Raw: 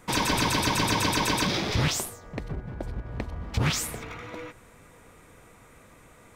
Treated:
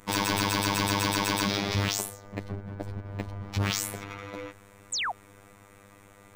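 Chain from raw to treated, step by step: hard clip -21 dBFS, distortion -14 dB; robotiser 100 Hz; painted sound fall, 4.92–5.12, 640–8900 Hz -31 dBFS; gain +1.5 dB

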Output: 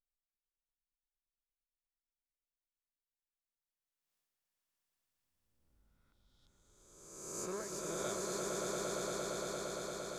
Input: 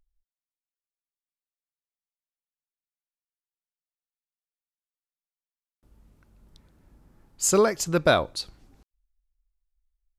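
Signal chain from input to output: spectral swells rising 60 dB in 1.18 s; Doppler pass-by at 4.16, 15 m/s, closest 1.3 m; swelling echo 0.115 s, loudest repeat 8, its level -4 dB; gain +6.5 dB

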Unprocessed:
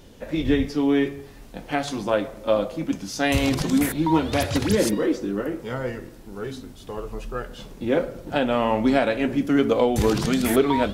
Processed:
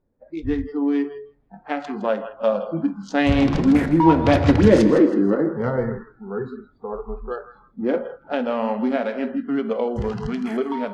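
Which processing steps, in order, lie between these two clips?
Wiener smoothing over 15 samples; Doppler pass-by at 4.85, 6 m/s, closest 6.5 m; thinning echo 0.162 s, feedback 38%, high-pass 850 Hz, level -12 dB; on a send at -11 dB: reverb RT60 0.80 s, pre-delay 3 ms; on the sum: spectral noise reduction 22 dB; LPF 6000 Hz 12 dB/oct; in parallel at -1 dB: compressor, threshold -33 dBFS, peak gain reduction 16.5 dB; on the sum: high shelf 4500 Hz -11.5 dB; gain +6 dB

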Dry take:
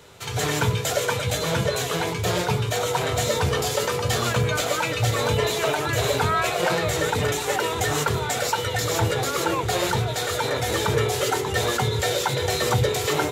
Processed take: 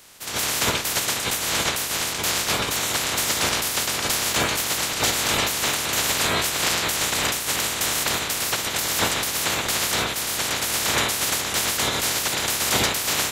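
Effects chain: spectral limiter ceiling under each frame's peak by 28 dB

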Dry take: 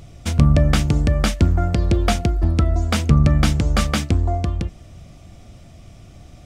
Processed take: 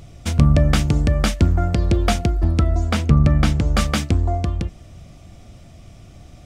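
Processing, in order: 2.89–3.77 high shelf 4500 Hz -7 dB

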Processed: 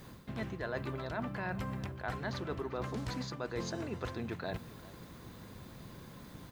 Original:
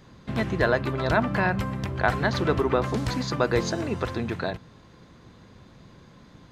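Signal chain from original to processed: added noise blue -64 dBFS; reverse; compressor 6:1, threshold -36 dBFS, peak gain reduction 18.5 dB; reverse; echo 0.394 s -19.5 dB

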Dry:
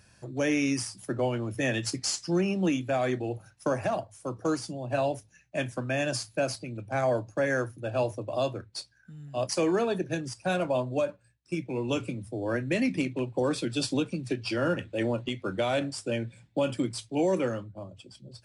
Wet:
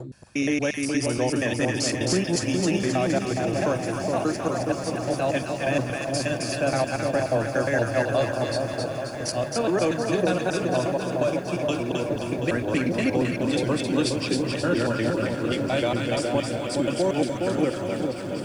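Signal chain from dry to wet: slices in reverse order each 0.118 s, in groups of 3; split-band echo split 950 Hz, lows 0.417 s, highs 0.265 s, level -3 dB; lo-fi delay 0.731 s, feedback 80%, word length 9-bit, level -12 dB; gain +2.5 dB

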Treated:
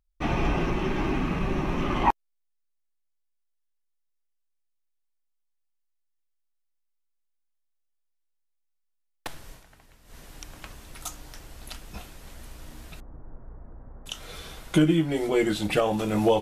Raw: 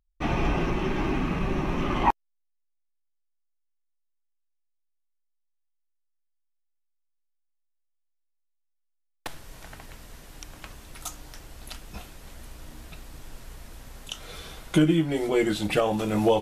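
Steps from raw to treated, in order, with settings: 9.5–10.18 dip -12 dB, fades 0.14 s; 13–14.06 Bessel low-pass 840 Hz, order 8

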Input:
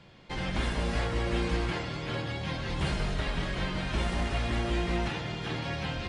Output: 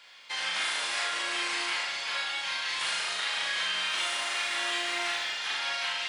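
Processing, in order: HPF 1400 Hz 12 dB/oct; high shelf 7800 Hz +8 dB; in parallel at +0.5 dB: limiter -31.5 dBFS, peak gain reduction 8 dB; 3.85–5.35 on the sum: modulation noise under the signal 34 dB; flutter echo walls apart 6.4 m, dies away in 0.67 s

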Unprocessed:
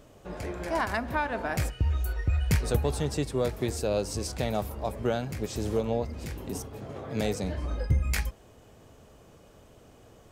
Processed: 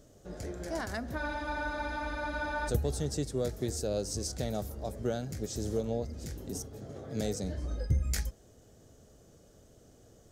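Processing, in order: fifteen-band EQ 1000 Hz -11 dB, 2500 Hz -10 dB, 6300 Hz +6 dB; spectral freeze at 1.21, 1.47 s; gain -3.5 dB

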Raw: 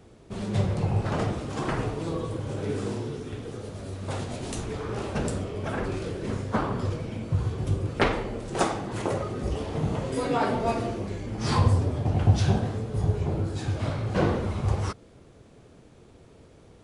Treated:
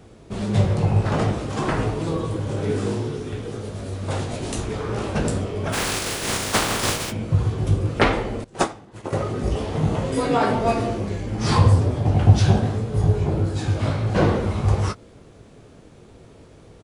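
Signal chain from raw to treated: 5.72–7.1 spectral contrast lowered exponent 0.32; doubler 19 ms -9 dB; 8.44–9.13 upward expander 2.5:1, over -34 dBFS; gain +5 dB

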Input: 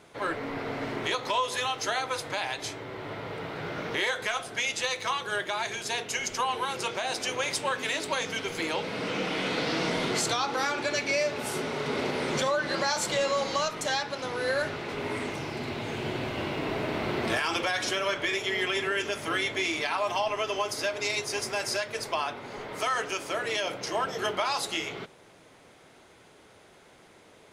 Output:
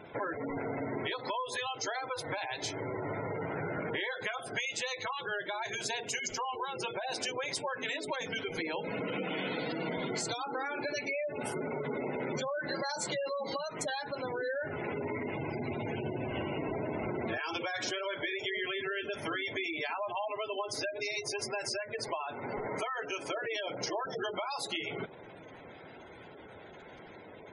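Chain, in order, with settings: compressor, threshold -38 dBFS, peak gain reduction 14 dB; spectral gate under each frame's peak -15 dB strong; notch 1200 Hz, Q 7.8; gain +6 dB

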